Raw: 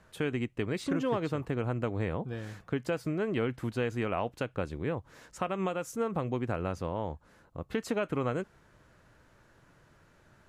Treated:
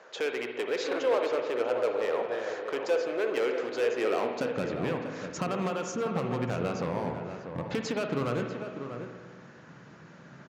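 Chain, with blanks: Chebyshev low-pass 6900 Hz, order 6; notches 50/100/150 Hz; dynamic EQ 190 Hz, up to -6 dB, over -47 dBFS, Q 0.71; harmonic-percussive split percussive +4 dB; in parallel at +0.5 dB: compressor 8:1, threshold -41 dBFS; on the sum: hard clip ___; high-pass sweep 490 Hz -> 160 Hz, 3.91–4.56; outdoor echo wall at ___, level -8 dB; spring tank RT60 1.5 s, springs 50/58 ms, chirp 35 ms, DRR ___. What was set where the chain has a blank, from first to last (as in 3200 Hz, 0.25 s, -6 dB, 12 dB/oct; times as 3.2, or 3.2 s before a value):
-28 dBFS, 110 m, 4 dB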